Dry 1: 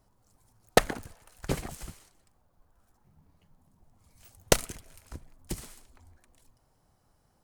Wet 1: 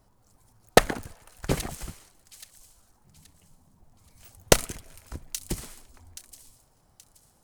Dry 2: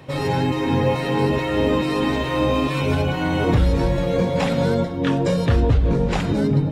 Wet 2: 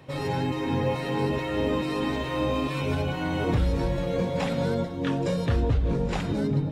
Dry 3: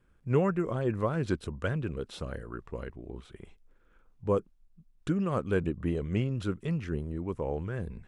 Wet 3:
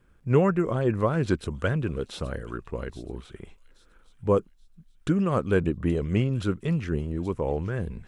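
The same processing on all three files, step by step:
feedback echo behind a high-pass 826 ms, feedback 32%, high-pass 4.2 kHz, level -10.5 dB; normalise loudness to -27 LUFS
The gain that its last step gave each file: +4.0 dB, -6.5 dB, +5.5 dB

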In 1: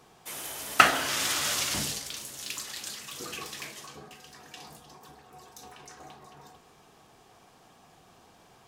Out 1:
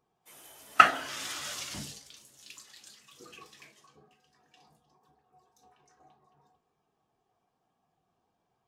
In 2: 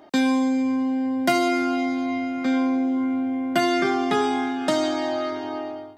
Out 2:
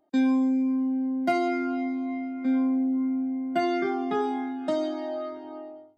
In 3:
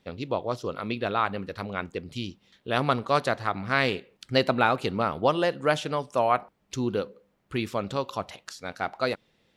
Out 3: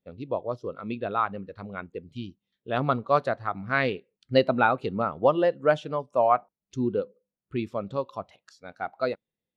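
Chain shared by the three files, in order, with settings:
spectral contrast expander 1.5:1; normalise loudness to -27 LUFS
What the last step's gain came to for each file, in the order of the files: 0.0 dB, -6.0 dB, -1.0 dB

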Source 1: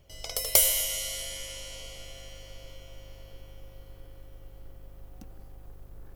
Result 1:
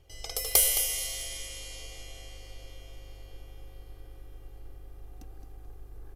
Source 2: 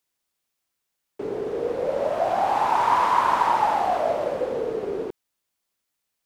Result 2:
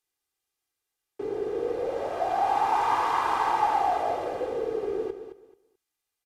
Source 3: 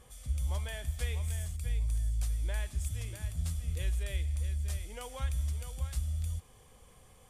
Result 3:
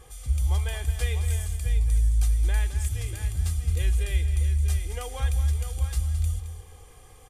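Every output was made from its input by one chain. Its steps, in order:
comb 2.5 ms, depth 60%; feedback delay 217 ms, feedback 22%, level -10.5 dB; resampled via 32 kHz; normalise loudness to -27 LUFS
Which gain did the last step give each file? -2.5 dB, -5.0 dB, +5.5 dB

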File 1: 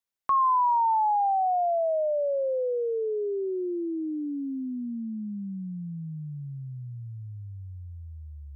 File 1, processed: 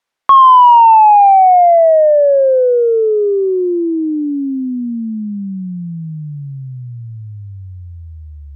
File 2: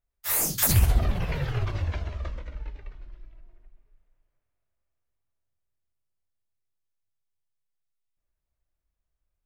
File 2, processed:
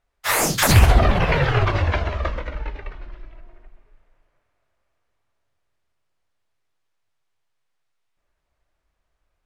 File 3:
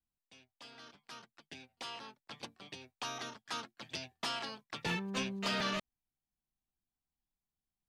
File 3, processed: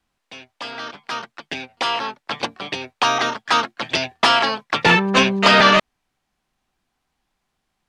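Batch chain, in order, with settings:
Bessel low-pass 12 kHz; overdrive pedal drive 11 dB, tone 1.7 kHz, clips at -11 dBFS; peak normalisation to -1.5 dBFS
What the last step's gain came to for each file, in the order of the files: +14.5 dB, +12.5 dB, +21.0 dB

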